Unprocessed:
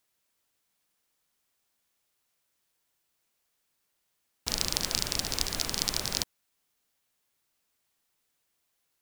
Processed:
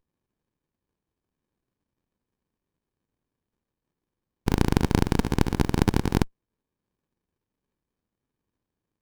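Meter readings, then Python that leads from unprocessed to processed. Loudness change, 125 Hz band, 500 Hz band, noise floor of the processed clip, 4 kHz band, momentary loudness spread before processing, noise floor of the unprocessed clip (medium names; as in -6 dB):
+4.5 dB, +18.5 dB, +13.0 dB, under -85 dBFS, -8.5 dB, 5 LU, -78 dBFS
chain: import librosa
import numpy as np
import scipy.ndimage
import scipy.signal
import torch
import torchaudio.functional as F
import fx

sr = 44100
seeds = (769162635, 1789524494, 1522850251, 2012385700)

y = fx.mod_noise(x, sr, seeds[0], snr_db=28)
y = fx.running_max(y, sr, window=65)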